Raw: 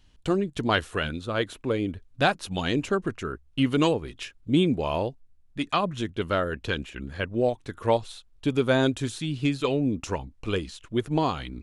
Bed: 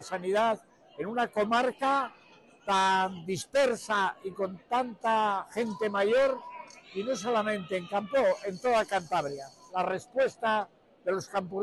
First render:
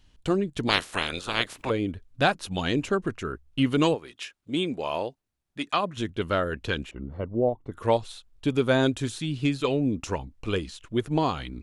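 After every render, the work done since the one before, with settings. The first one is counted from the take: 0.67–1.69 s: spectral peaks clipped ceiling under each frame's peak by 25 dB; 3.94–5.96 s: high-pass 710 Hz -> 280 Hz 6 dB/octave; 6.91–7.72 s: Savitzky-Golay filter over 65 samples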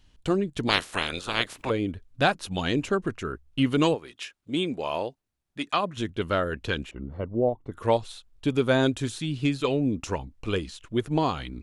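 no audible change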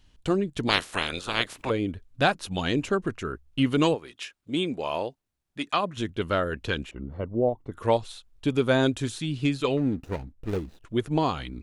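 9.77–10.85 s: median filter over 41 samples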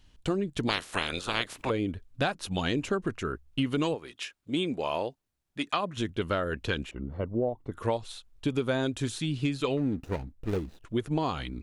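compression, threshold -24 dBFS, peak gain reduction 8 dB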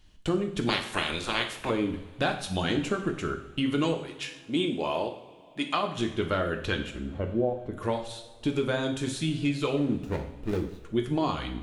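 two-slope reverb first 0.63 s, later 3.4 s, from -21 dB, DRR 3.5 dB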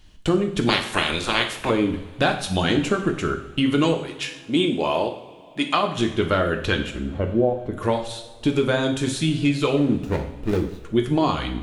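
trim +7 dB

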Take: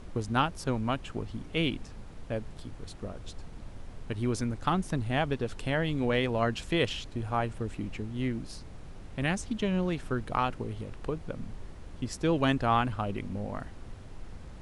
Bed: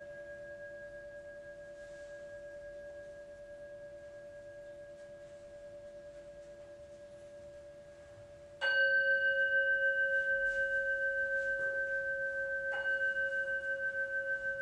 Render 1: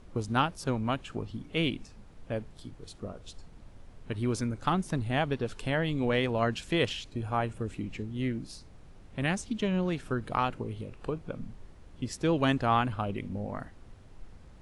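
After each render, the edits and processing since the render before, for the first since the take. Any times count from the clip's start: noise print and reduce 7 dB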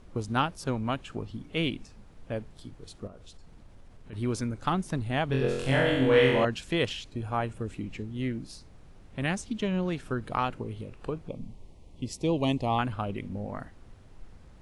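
3.07–4.13 s: compression 3:1, threshold -45 dBFS; 5.27–6.45 s: flutter echo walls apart 3.9 m, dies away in 1 s; 11.28–12.79 s: Butterworth band-stop 1.5 kHz, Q 1.2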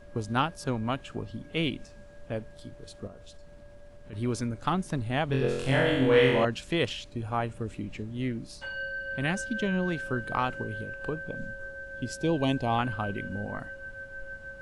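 add bed -6 dB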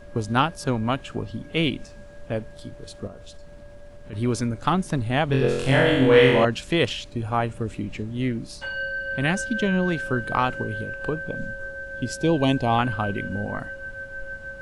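trim +6 dB

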